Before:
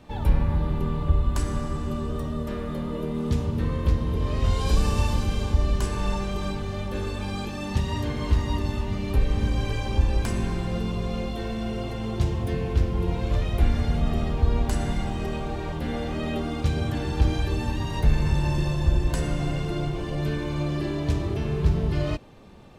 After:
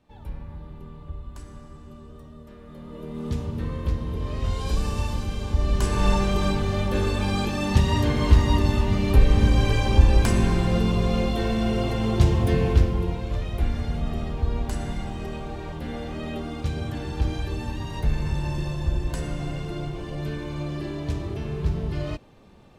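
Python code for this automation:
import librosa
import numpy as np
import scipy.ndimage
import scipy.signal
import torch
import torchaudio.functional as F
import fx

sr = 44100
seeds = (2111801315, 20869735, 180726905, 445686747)

y = fx.gain(x, sr, db=fx.line((2.58, -15.0), (3.26, -3.5), (5.41, -3.5), (6.06, 6.0), (12.68, 6.0), (13.24, -3.5)))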